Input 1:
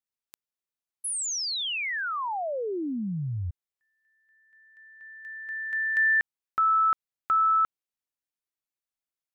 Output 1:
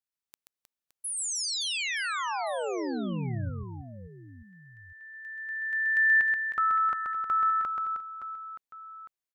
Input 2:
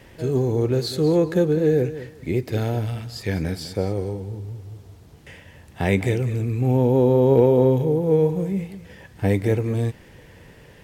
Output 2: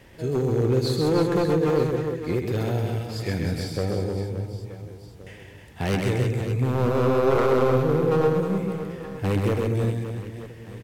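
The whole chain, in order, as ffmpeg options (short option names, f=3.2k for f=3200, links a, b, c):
-af "aeval=exprs='0.2*(abs(mod(val(0)/0.2+3,4)-2)-1)':c=same,aecho=1:1:130|312|566.8|923.5|1423:0.631|0.398|0.251|0.158|0.1,volume=-3dB"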